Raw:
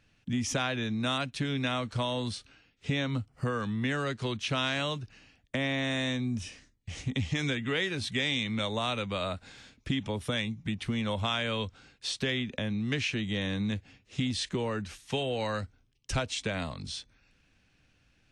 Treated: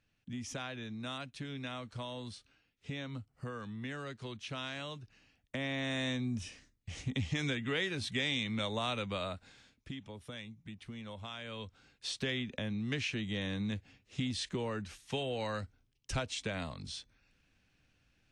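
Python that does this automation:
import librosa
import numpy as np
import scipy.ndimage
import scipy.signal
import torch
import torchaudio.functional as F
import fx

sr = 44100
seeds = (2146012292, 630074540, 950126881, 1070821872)

y = fx.gain(x, sr, db=fx.line((4.88, -11.0), (6.07, -4.0), (9.13, -4.0), (10.03, -14.5), (11.35, -14.5), (12.06, -5.0)))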